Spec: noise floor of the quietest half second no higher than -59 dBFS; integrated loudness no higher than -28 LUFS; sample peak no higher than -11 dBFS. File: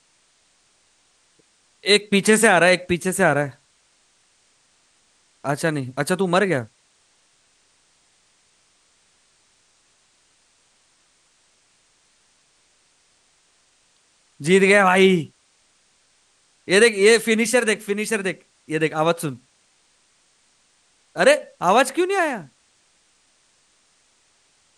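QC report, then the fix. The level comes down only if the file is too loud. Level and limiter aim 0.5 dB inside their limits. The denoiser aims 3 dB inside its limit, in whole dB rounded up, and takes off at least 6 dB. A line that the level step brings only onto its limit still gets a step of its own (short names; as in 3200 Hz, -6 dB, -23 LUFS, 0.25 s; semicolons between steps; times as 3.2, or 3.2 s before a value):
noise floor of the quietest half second -62 dBFS: OK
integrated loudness -18.5 LUFS: fail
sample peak -3.0 dBFS: fail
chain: gain -10 dB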